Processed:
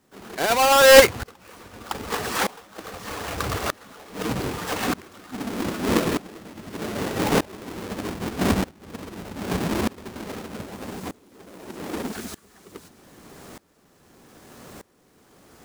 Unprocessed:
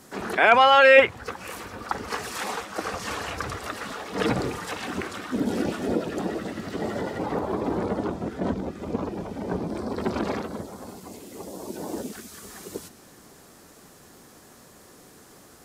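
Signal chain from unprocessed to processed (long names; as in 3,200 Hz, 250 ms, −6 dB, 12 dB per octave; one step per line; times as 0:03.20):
each half-wave held at its own peak
tremolo with a ramp in dB swelling 0.81 Hz, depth 24 dB
level +5 dB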